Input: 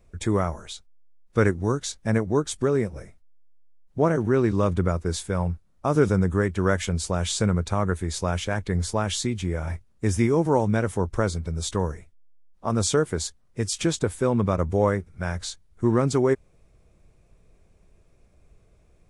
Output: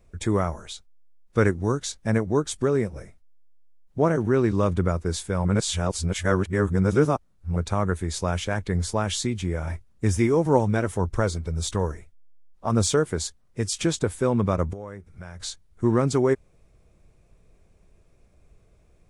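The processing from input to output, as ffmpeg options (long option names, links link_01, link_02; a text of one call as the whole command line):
ffmpeg -i in.wav -filter_complex "[0:a]asplit=3[link_01][link_02][link_03];[link_01]afade=type=out:start_time=9.69:duration=0.02[link_04];[link_02]aphaser=in_gain=1:out_gain=1:delay=3.4:decay=0.3:speed=1.8:type=triangular,afade=type=in:start_time=9.69:duration=0.02,afade=type=out:start_time=12.94:duration=0.02[link_05];[link_03]afade=type=in:start_time=12.94:duration=0.02[link_06];[link_04][link_05][link_06]amix=inputs=3:normalize=0,asettb=1/sr,asplit=3[link_07][link_08][link_09];[link_07]atrim=end=14.734[link_10];[link_08]atrim=start=14.73:end=15.4,asetpts=PTS-STARTPTS,afade=type=in:duration=0.004:curve=qsin,afade=type=out:start_time=0.666:duration=0.004:curve=qsin,acompressor=threshold=-38dB:ratio=3:attack=3.2:release=140:knee=1:detection=peak[link_11];[link_09]atrim=start=15.396[link_12];[link_10][link_11]acrossfade=duration=0.004:curve1=hsin:curve2=qsin[link_13];[link_13][link_12]acrossfade=duration=0.004:curve1=qsin:curve2=hsin,asplit=3[link_14][link_15][link_16];[link_14]atrim=end=5.452[link_17];[link_15]atrim=start=5.448:end=7.562,asetpts=PTS-STARTPTS,areverse[link_18];[link_16]atrim=start=7.558[link_19];[link_17][link_18]acrossfade=duration=0.004:curve1=hsin:curve2=hsin[link_20];[link_20][link_19]acrossfade=duration=0.004:curve1=hsin:curve2=hsin" out.wav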